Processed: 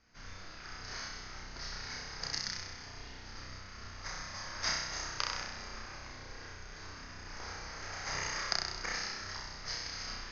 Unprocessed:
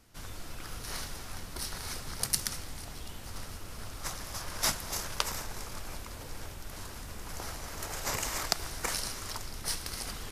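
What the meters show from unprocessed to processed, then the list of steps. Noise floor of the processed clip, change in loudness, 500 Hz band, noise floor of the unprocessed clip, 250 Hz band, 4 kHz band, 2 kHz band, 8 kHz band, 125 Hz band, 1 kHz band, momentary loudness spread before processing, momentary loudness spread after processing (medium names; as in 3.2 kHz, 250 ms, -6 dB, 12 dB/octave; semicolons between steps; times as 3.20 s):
-49 dBFS, -3.0 dB, -5.5 dB, -44 dBFS, -6.0 dB, -1.0 dB, +1.5 dB, -7.0 dB, -6.0 dB, -2.5 dB, 13 LU, 14 LU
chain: rippled Chebyshev low-pass 6.6 kHz, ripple 9 dB; flutter echo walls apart 5.5 m, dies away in 0.99 s; trim -1.5 dB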